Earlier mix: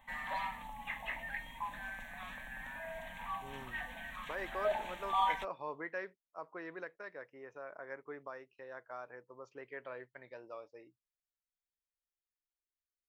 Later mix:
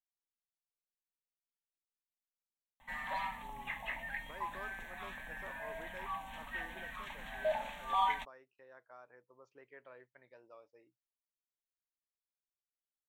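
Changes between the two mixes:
speech −9.5 dB
background: entry +2.80 s

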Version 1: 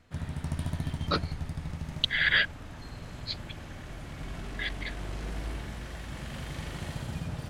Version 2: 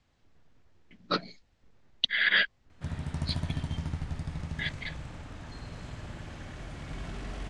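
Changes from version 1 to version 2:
background: entry +2.70 s
master: add low-pass filter 9,100 Hz 24 dB per octave

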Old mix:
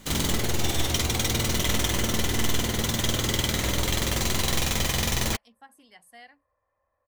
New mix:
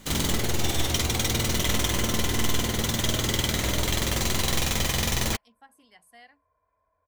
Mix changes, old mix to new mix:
speech −3.0 dB
second sound: add EQ curve with evenly spaced ripples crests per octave 1.7, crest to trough 17 dB

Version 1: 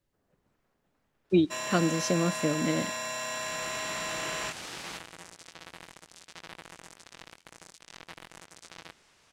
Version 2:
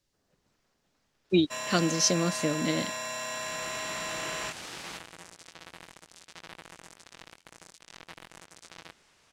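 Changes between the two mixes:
speech: add parametric band 5,300 Hz +12.5 dB 1.7 octaves
reverb: off

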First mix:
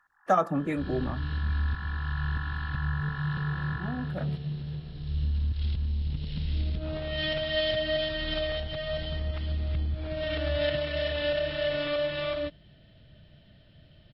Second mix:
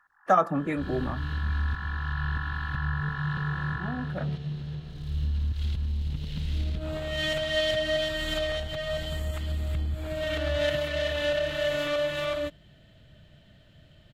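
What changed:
second sound: remove linear-phase brick-wall low-pass 5,500 Hz
master: add parametric band 1,300 Hz +3.5 dB 1.7 octaves

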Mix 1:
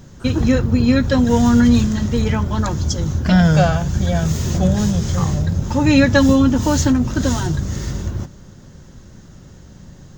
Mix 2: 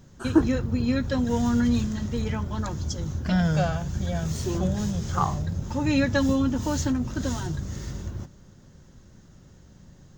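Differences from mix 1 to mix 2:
speech +4.5 dB
background −10.0 dB

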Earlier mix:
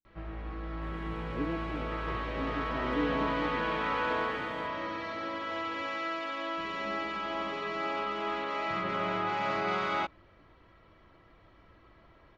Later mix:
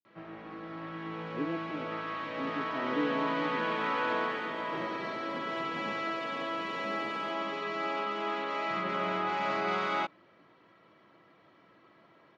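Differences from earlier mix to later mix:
second sound: entry +2.65 s
master: add high-pass filter 150 Hz 24 dB per octave

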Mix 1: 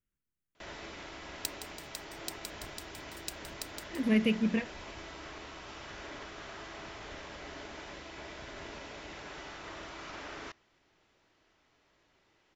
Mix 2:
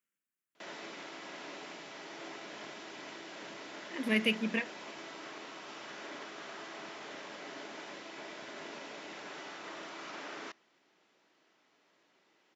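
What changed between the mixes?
speech: add tilt shelving filter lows −6 dB, about 680 Hz
second sound: muted
master: add high-pass filter 180 Hz 24 dB per octave

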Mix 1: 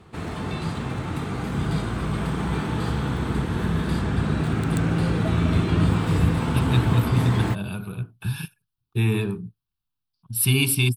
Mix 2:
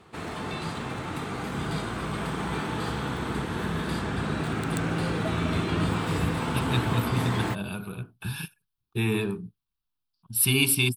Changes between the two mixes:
speech: add parametric band 110 Hz −7.5 dB 1.3 octaves
background: add low-shelf EQ 210 Hz −11 dB

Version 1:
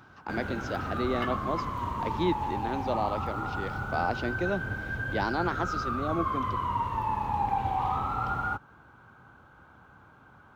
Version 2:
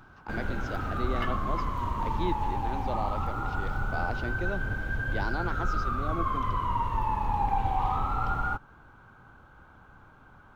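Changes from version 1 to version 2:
speech −5.0 dB
master: remove high-pass filter 79 Hz 12 dB per octave

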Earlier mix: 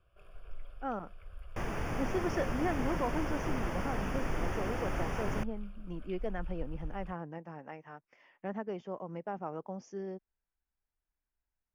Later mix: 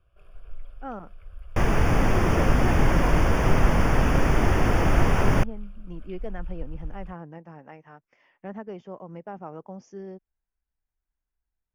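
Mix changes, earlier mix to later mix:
second sound +12.0 dB
master: add low-shelf EQ 140 Hz +6 dB

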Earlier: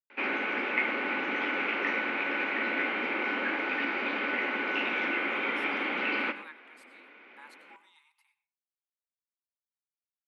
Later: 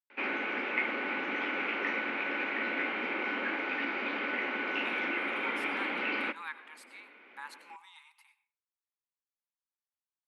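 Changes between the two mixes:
speech +7.5 dB
background: send −11.5 dB

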